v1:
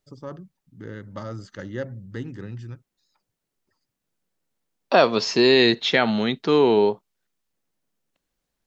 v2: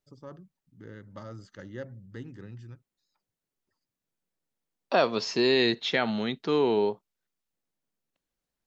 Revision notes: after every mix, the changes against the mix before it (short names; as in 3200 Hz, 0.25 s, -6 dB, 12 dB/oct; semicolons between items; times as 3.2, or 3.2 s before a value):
first voice -8.5 dB; second voice -7.0 dB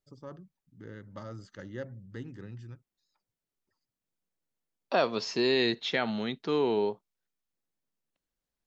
second voice -3.0 dB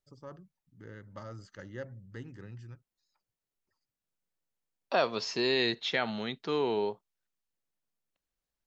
first voice: add bell 3600 Hz -6 dB 0.23 oct; master: add bell 250 Hz -4.5 dB 1.8 oct